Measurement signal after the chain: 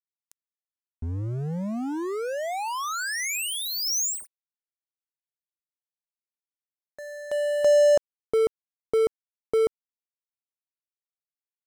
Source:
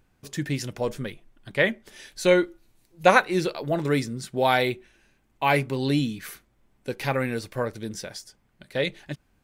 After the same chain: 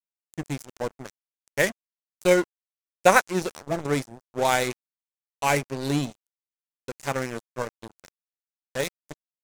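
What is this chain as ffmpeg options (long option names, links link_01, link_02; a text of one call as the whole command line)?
ffmpeg -i in.wav -af "adynamicsmooth=sensitivity=3:basefreq=4700,aeval=exprs='sgn(val(0))*max(abs(val(0))-0.0335,0)':channel_layout=same,highshelf=frequency=5100:width_type=q:width=1.5:gain=9,volume=1.5dB" out.wav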